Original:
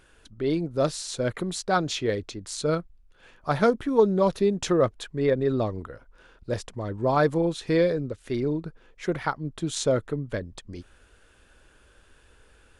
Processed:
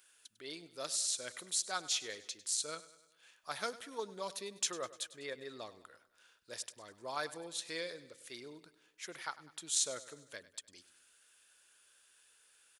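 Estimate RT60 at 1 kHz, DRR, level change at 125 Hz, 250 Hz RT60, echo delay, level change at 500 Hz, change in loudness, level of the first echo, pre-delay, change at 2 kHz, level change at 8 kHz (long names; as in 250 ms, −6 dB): no reverb audible, no reverb audible, −32.0 dB, no reverb audible, 100 ms, −21.5 dB, −13.0 dB, −17.0 dB, no reverb audible, −10.5 dB, +1.5 dB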